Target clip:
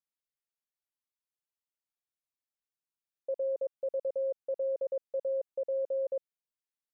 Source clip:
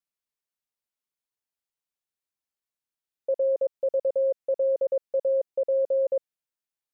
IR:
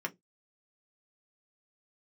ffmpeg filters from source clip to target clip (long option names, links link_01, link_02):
-af "volume=-8dB"